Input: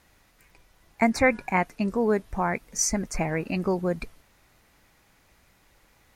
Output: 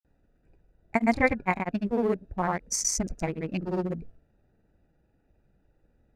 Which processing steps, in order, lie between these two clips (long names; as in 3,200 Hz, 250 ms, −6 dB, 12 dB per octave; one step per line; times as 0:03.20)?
adaptive Wiener filter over 41 samples
granular cloud, grains 20 per second, spray 100 ms, pitch spread up and down by 0 semitones